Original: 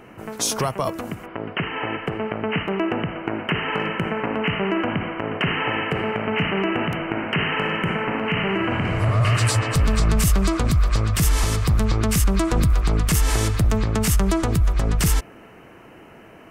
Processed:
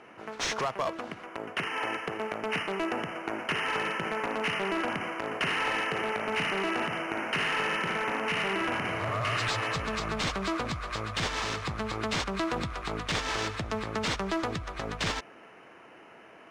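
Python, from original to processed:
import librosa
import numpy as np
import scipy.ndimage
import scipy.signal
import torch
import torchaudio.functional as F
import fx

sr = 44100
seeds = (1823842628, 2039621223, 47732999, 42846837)

p1 = fx.highpass(x, sr, hz=700.0, slope=6)
p2 = fx.notch(p1, sr, hz=4700.0, q=18.0)
p3 = (np.mod(10.0 ** (19.5 / 20.0) * p2 + 1.0, 2.0) - 1.0) / 10.0 ** (19.5 / 20.0)
p4 = p2 + (p3 * 10.0 ** (-9.5 / 20.0))
p5 = fx.sample_hold(p4, sr, seeds[0], rate_hz=12000.0, jitter_pct=0)
p6 = fx.air_absorb(p5, sr, metres=100.0)
y = p6 * 10.0 ** (-4.0 / 20.0)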